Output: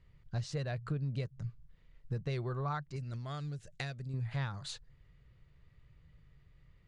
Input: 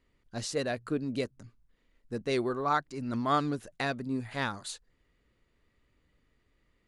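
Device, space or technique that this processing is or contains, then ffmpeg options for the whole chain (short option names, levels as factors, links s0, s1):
jukebox: -filter_complex "[0:a]lowpass=5500,lowshelf=f=190:t=q:w=3:g=9,acompressor=threshold=0.0178:ratio=5,asettb=1/sr,asplit=3[s0][s1][s2];[s0]atrim=end=2.964[s3];[s1]atrim=start=2.96:end=4.14,asetpts=PTS-STARTPTS,afade=t=in:d=0.004:c=qsin,afade=t=out:st=1.176:d=0.004:c=qsin,equalizer=f=125:t=o:w=1:g=-5,equalizer=f=250:t=o:w=1:g=-4,equalizer=f=1000:t=o:w=1:g=-10,equalizer=f=8000:t=o:w=1:g=10[s4];[s2]atrim=start=4.136[s5];[s3][s4]acrossfade=d=0.004:c1=hsin:c2=qsin[s6];[s6][s5]acrossfade=d=0.004:c1=qsin:c2=hsin,volume=1.12"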